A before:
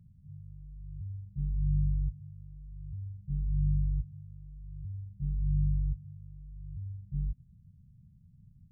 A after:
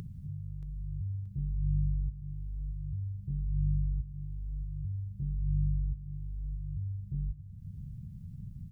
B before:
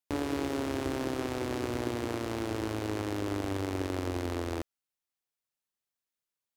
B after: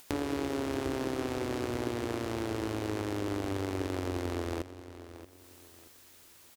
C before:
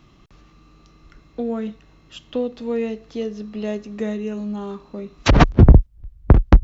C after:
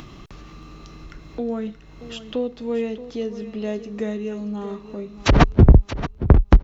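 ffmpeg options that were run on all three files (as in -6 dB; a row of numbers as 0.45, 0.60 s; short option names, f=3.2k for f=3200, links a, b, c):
-filter_complex "[0:a]equalizer=f=400:w=5.5:g=2,acompressor=mode=upward:threshold=-28dB:ratio=2.5,asplit=2[a][b];[b]aecho=0:1:628|1256|1884:0.211|0.0613|0.0178[c];[a][c]amix=inputs=2:normalize=0,volume=-1.5dB"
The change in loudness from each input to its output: -2.0, -0.5, -1.5 LU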